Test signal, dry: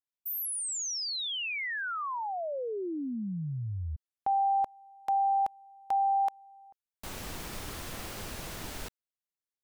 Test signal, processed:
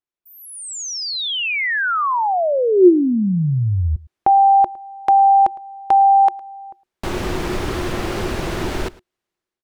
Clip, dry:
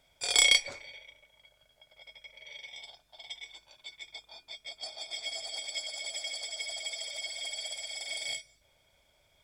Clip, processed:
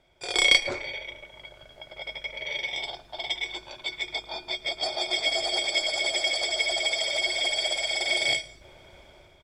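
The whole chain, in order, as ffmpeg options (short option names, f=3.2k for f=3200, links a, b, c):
-filter_complex "[0:a]asplit=2[a][b];[b]acompressor=threshold=-42dB:ratio=6:release=160:detection=rms,volume=-3dB[c];[a][c]amix=inputs=2:normalize=0,aemphasis=mode=reproduction:type=75kf,aecho=1:1:109:0.0794,dynaudnorm=f=200:g=5:m=14.5dB,equalizer=f=360:t=o:w=0.21:g=12.5"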